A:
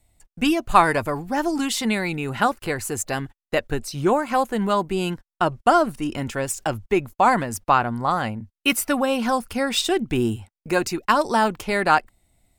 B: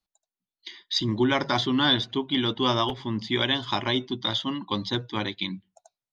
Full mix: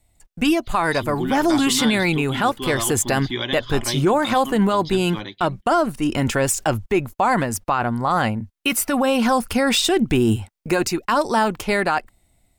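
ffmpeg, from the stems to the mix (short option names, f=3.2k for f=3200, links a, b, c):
-filter_complex "[0:a]volume=0.5dB[a];[1:a]bandreject=f=930:w=18,volume=-9dB[b];[a][b]amix=inputs=2:normalize=0,dynaudnorm=f=140:g=5:m=11.5dB,alimiter=limit=-9.5dB:level=0:latency=1:release=30"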